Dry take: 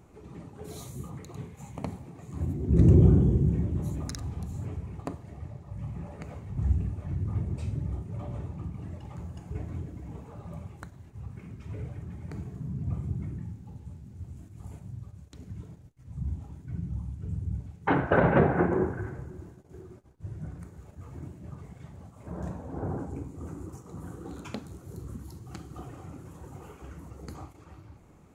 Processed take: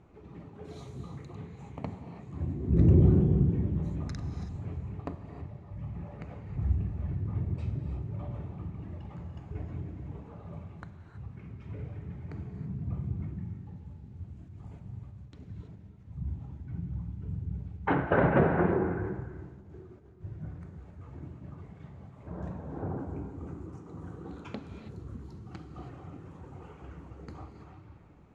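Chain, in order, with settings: low-pass 3.7 kHz 12 dB/octave; gated-style reverb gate 350 ms rising, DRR 7.5 dB; trim -2.5 dB

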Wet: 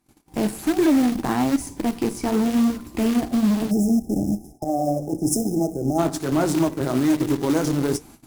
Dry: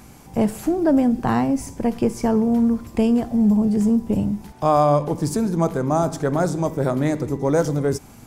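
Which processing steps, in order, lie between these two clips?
graphic EQ with 31 bands 100 Hz -8 dB, 315 Hz +10 dB, 500 Hz -5 dB, 4 kHz +5 dB, 10 kHz +6 dB; saturation -7.5 dBFS, distortion -20 dB; peak limiter -15.5 dBFS, peak gain reduction 7 dB; peaking EQ 180 Hz -2.5 dB 0.56 oct; short-mantissa float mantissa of 2-bit; flange 1.1 Hz, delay 6.2 ms, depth 9.6 ms, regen -59%; Chebyshev shaper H 7 -24 dB, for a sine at -16 dBFS; gate -50 dBFS, range -25 dB; 3.71–5.99 s: time-frequency box 860–5000 Hz -28 dB; 4.64–6.81 s: three bands expanded up and down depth 100%; trim +6.5 dB

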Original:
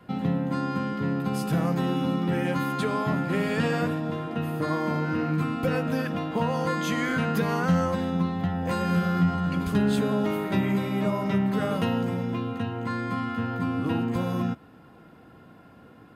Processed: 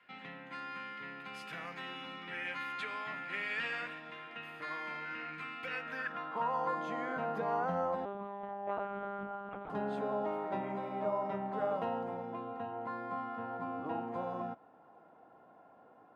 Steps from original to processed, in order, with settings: 8.05–9.70 s: monotone LPC vocoder at 8 kHz 200 Hz; band-pass sweep 2.2 kHz -> 750 Hz, 5.74–6.84 s

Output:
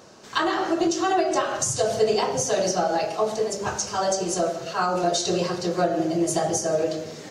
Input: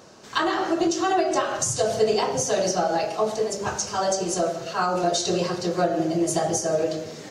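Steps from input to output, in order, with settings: de-hum 54.57 Hz, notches 5

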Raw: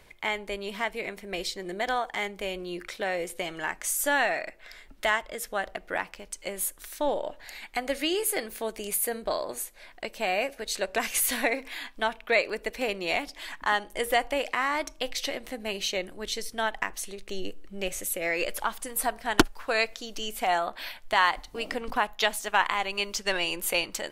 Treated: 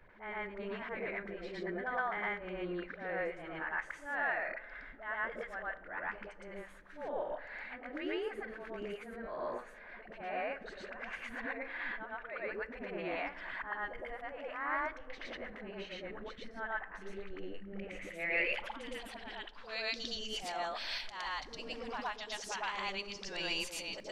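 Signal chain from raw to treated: compression 12:1, threshold -29 dBFS, peak gain reduction 16.5 dB; low-pass sweep 1.6 kHz -> 5.3 kHz, 17.34–20.40 s; slow attack 114 ms; phase dispersion highs, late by 96 ms, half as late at 420 Hz; reverse echo 114 ms -3.5 dB; reverberation RT60 2.1 s, pre-delay 3 ms, DRR 17.5 dB; trim -4.5 dB

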